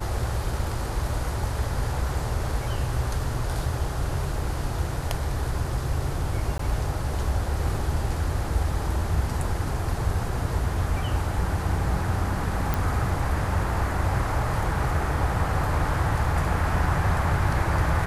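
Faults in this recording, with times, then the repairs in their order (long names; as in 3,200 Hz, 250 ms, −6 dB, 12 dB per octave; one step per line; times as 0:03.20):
0:06.58–0:06.59: drop-out 13 ms
0:12.74: click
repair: click removal
repair the gap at 0:06.58, 13 ms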